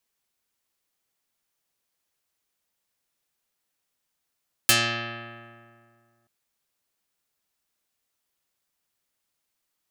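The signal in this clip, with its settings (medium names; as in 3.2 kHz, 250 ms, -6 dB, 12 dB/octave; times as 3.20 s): plucked string A#2, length 1.58 s, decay 2.16 s, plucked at 0.24, dark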